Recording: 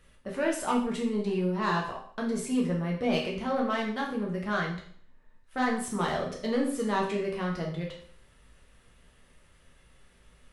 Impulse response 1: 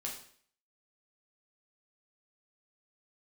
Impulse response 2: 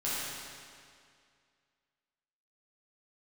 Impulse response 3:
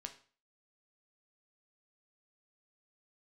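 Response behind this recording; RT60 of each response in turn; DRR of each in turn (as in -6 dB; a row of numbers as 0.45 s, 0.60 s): 1; 0.55 s, 2.2 s, 0.40 s; -2.0 dB, -10.5 dB, 5.0 dB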